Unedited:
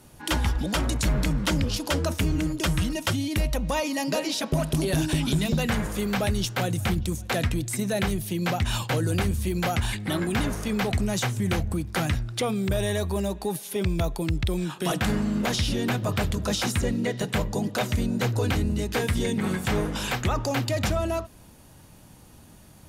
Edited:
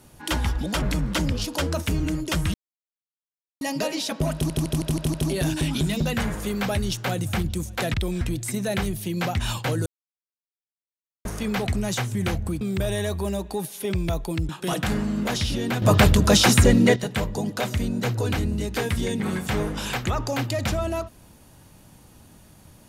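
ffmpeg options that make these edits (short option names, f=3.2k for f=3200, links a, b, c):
-filter_complex "[0:a]asplit=17[a][b][c][d][e][f][g][h][i][j][k][l][m][n][o][p][q];[a]atrim=end=0.822[r];[b]atrim=start=1.138:end=2.86,asetpts=PTS-STARTPTS,afade=t=out:st=1.718:d=0.004:c=hsin[s];[c]atrim=start=2.86:end=3.93,asetpts=PTS-STARTPTS,volume=0[t];[d]atrim=start=3.93:end=4.822,asetpts=PTS-STARTPTS,afade=t=in:d=0.004:c=hsin[u];[e]atrim=start=4.658:end=4.822[v];[f]atrim=start=4.658:end=4.822[w];[g]atrim=start=4.658:end=4.822[x];[h]atrim=start=4.658:end=4.822[y];[i]atrim=start=4.658:end=7.462[z];[j]atrim=start=14.398:end=14.672[aa];[k]atrim=start=7.458:end=9.11,asetpts=PTS-STARTPTS,afade=t=out:st=1.648:d=0.004:c=hsin[ab];[l]atrim=start=9.11:end=10.5,asetpts=PTS-STARTPTS,volume=0[ac];[m]atrim=start=10.5:end=11.862,asetpts=PTS-STARTPTS,afade=t=in:d=0.004:c=hsin[ad];[n]atrim=start=12.518:end=14.402[ae];[o]atrim=start=14.668:end=16.002[af];[p]atrim=start=15.998:end=17.142,asetpts=PTS-STARTPTS,volume=10dB[ag];[q]atrim=start=17.138[ah];[s][t][u]concat=n=3:v=0:a=1[ai];[r][ai]acrossfade=d=0.004:c1=hsin:c2=hsin[aj];[aj][v]acrossfade=d=0.004:c1=hsin:c2=hsin[ak];[ak][w]acrossfade=d=0.004:c1=hsin:c2=hsin[al];[al][x]acrossfade=d=0.004:c1=hsin:c2=hsin[am];[am][y]acrossfade=d=0.004:c1=hsin:c2=hsin[an];[an][z]acrossfade=d=0.004:c1=hsin:c2=hsin[ao];[ao][aa]acrossfade=d=0.004:c1=hsin:c2=hsin[ap];[ab][ac][ad]concat=n=3:v=0:a=1[aq];[ap][aq]acrossfade=d=0.004:c1=hsin:c2=hsin[ar];[ar][ae]acrossfade=d=0.004:c1=hsin:c2=hsin[as];[as][af]acrossfade=d=0.004:c1=hsin:c2=hsin[at];[at][ag]acrossfade=d=0.004:c1=hsin:c2=hsin[au];[au][ah]acrossfade=d=0.004:c1=hsin:c2=hsin"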